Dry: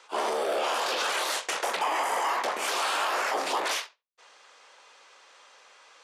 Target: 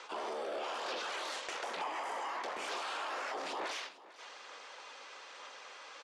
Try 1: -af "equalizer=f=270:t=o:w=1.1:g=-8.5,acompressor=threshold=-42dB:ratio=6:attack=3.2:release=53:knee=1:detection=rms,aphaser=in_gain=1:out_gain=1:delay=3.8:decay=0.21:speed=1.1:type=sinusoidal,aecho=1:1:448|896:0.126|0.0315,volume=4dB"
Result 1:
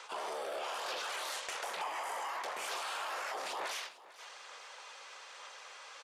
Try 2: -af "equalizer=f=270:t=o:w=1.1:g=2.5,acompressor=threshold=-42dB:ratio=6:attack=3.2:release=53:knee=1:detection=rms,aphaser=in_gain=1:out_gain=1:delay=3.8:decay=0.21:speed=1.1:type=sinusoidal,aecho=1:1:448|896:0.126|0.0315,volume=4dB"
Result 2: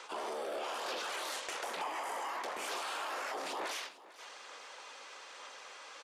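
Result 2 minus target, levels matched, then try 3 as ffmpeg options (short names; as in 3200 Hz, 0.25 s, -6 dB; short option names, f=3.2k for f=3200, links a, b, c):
8000 Hz band +4.0 dB
-af "equalizer=f=270:t=o:w=1.1:g=2.5,acompressor=threshold=-42dB:ratio=6:attack=3.2:release=53:knee=1:detection=rms,lowpass=6.4k,aphaser=in_gain=1:out_gain=1:delay=3.8:decay=0.21:speed=1.1:type=sinusoidal,aecho=1:1:448|896:0.126|0.0315,volume=4dB"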